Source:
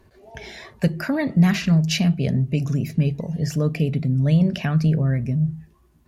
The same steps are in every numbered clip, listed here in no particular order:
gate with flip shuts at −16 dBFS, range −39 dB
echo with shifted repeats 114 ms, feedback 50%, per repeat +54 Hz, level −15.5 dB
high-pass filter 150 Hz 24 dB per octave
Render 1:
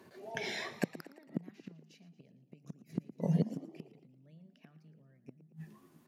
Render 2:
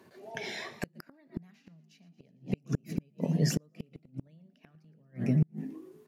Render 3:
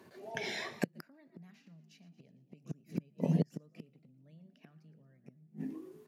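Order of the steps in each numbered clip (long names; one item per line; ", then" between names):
gate with flip, then echo with shifted repeats, then high-pass filter
echo with shifted repeats, then high-pass filter, then gate with flip
echo with shifted repeats, then gate with flip, then high-pass filter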